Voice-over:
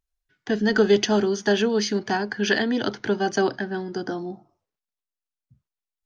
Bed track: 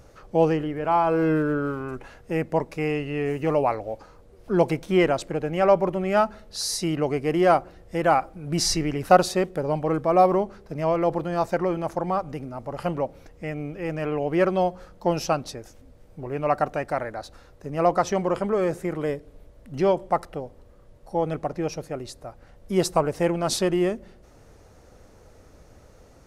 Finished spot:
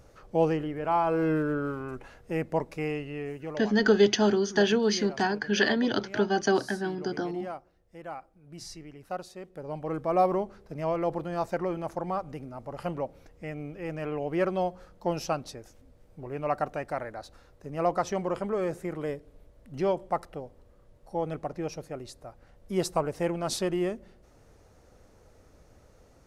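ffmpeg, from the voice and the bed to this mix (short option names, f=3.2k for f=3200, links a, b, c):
-filter_complex "[0:a]adelay=3100,volume=-2.5dB[a];[1:a]volume=9.5dB,afade=t=out:st=2.73:d=0.98:silence=0.16788,afade=t=in:st=9.4:d=0.73:silence=0.199526[b];[a][b]amix=inputs=2:normalize=0"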